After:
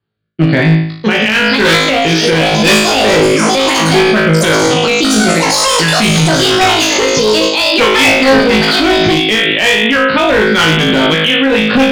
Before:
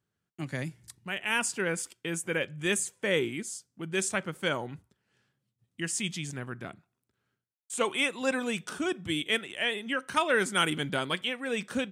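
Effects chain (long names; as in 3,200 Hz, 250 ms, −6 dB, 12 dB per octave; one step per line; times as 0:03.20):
Butterworth low-pass 4,800 Hz 96 dB per octave
noise gate −52 dBFS, range −18 dB
speech leveller within 4 dB 2 s
delay with pitch and tempo change per echo 762 ms, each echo +6 semitones, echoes 3
rotating-speaker cabinet horn 1 Hz
on a send: flutter between parallel walls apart 3.2 metres, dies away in 0.59 s
on the sum: asymmetric clip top −29.5 dBFS, bottom −20.5 dBFS
boost into a limiter +29.5 dB
level −1 dB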